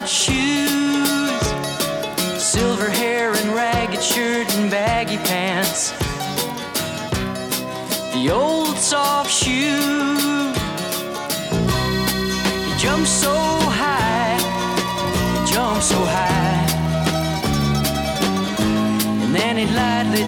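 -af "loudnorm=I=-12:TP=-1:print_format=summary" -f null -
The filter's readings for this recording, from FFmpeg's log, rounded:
Input Integrated:    -18.9 LUFS
Input True Peak:      -4.9 dBTP
Input LRA:             1.6 LU
Input Threshold:     -28.9 LUFS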